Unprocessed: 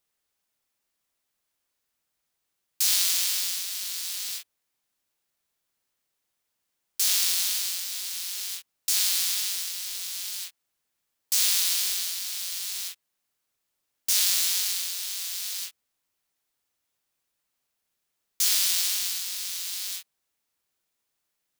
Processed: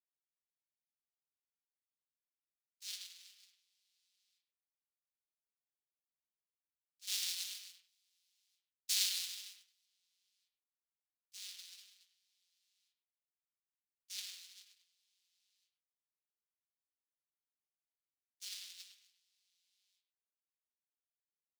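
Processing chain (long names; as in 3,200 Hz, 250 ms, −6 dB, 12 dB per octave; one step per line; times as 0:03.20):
downward compressor 4 to 1, threshold −26 dBFS, peak gain reduction 7 dB
meter weighting curve D
flanger 0.93 Hz, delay 2.9 ms, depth 9 ms, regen +47%
0:07.07–0:09.86: high-shelf EQ 7,700 Hz +4.5 dB
noise gate −21 dBFS, range −59 dB
far-end echo of a speakerphone 100 ms, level −7 dB
level +7.5 dB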